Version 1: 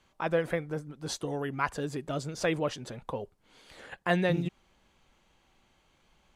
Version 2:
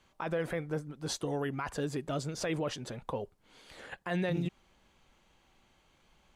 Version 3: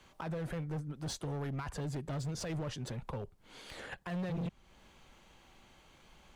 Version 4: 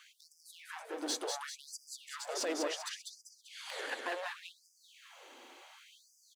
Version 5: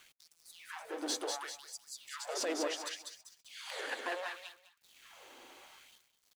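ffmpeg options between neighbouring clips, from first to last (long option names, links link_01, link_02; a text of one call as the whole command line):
ffmpeg -i in.wav -af "alimiter=level_in=0.5dB:limit=-24dB:level=0:latency=1:release=20,volume=-0.5dB" out.wav
ffmpeg -i in.wav -filter_complex "[0:a]acrossover=split=170[link_01][link_02];[link_02]acompressor=threshold=-53dB:ratio=2[link_03];[link_01][link_03]amix=inputs=2:normalize=0,asoftclip=type=hard:threshold=-40dB,volume=6dB" out.wav
ffmpeg -i in.wav -af "aecho=1:1:196|392|588|784|980|1176:0.631|0.309|0.151|0.0742|0.0364|0.0178,afftfilt=real='re*gte(b*sr/1024,220*pow(4800/220,0.5+0.5*sin(2*PI*0.69*pts/sr)))':imag='im*gte(b*sr/1024,220*pow(4800/220,0.5+0.5*sin(2*PI*0.69*pts/sr)))':win_size=1024:overlap=0.75,volume=5.5dB" out.wav
ffmpeg -i in.wav -af "aeval=exprs='val(0)*gte(abs(val(0)),0.00112)':channel_layout=same,aecho=1:1:206|412:0.168|0.0353" out.wav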